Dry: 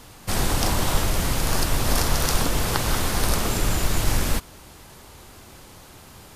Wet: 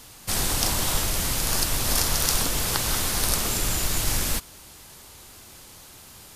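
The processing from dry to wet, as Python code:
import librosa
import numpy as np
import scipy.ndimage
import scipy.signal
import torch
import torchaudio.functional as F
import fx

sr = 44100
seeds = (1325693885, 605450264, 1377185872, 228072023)

y = fx.high_shelf(x, sr, hz=2600.0, db=10.0)
y = y * 10.0 ** (-5.5 / 20.0)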